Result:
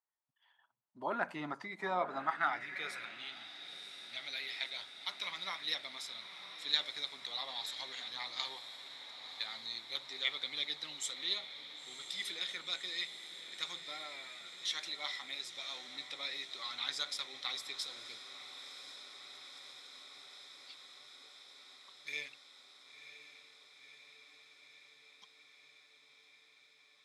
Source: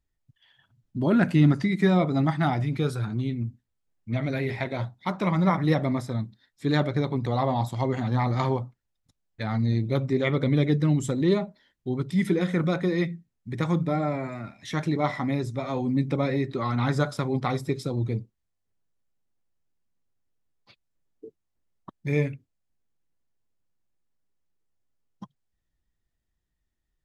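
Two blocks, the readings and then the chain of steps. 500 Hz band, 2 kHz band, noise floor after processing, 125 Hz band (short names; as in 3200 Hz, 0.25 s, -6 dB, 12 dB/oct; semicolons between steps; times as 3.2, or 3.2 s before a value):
-20.0 dB, -6.0 dB, -66 dBFS, under -35 dB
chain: RIAA curve recording; diffused feedback echo 1.011 s, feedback 76%, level -11 dB; band-pass sweep 950 Hz -> 3700 Hz, 2.05–3.51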